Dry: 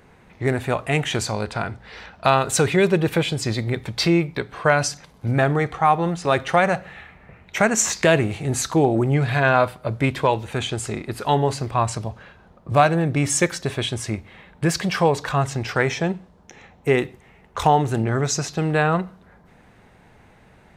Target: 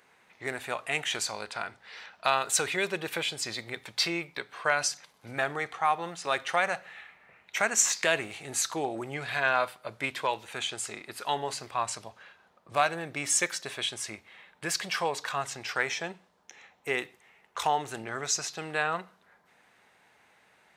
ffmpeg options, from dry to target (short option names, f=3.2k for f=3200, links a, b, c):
-af "highpass=f=1.5k:p=1,volume=-3dB"